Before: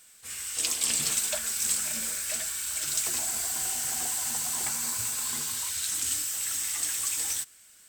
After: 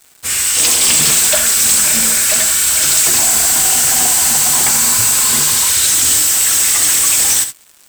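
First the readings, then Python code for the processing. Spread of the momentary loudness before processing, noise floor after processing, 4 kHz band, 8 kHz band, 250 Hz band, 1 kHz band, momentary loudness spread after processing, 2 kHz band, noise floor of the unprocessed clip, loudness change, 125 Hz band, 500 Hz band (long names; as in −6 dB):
4 LU, −47 dBFS, +18.5 dB, +18.0 dB, +19.0 dB, +19.0 dB, 1 LU, +19.0 dB, −55 dBFS, +18.5 dB, +19.0 dB, +18.5 dB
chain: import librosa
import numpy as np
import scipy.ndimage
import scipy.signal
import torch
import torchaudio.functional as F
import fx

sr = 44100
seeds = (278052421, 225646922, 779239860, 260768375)

y = fx.leveller(x, sr, passes=5)
y = fx.room_early_taps(y, sr, ms=(66, 80), db=(-11.0, -16.0))
y = y * 10.0 ** (4.0 / 20.0)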